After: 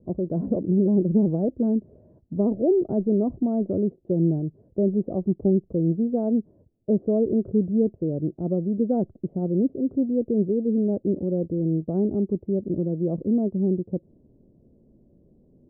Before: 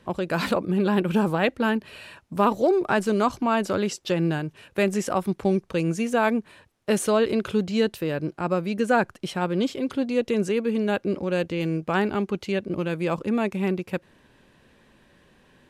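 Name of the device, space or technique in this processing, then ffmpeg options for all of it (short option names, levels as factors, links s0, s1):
under water: -af "lowpass=f=400:w=0.5412,lowpass=f=400:w=1.3066,equalizer=f=660:t=o:w=0.45:g=9,volume=1.41"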